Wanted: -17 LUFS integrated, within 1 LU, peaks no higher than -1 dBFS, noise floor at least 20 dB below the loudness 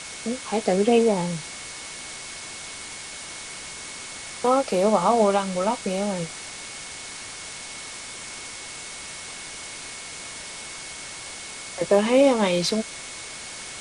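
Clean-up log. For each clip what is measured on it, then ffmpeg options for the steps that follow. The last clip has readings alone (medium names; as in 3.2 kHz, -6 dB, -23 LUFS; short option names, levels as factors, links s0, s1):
steady tone 2.2 kHz; tone level -44 dBFS; noise floor -38 dBFS; noise floor target -46 dBFS; loudness -26.0 LUFS; peak level -5.5 dBFS; loudness target -17.0 LUFS
-> -af "bandreject=f=2200:w=30"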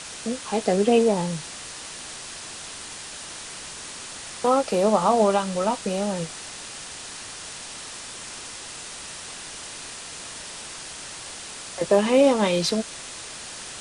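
steady tone not found; noise floor -38 dBFS; noise floor target -46 dBFS
-> -af "afftdn=nr=8:nf=-38"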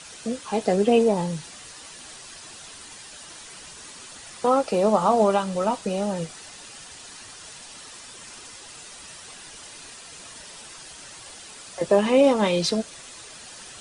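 noise floor -43 dBFS; loudness -22.5 LUFS; peak level -5.5 dBFS; loudness target -17.0 LUFS
-> -af "volume=1.88,alimiter=limit=0.891:level=0:latency=1"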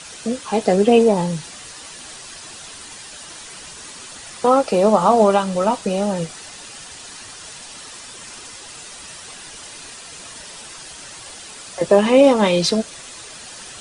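loudness -17.0 LUFS; peak level -1.0 dBFS; noise floor -38 dBFS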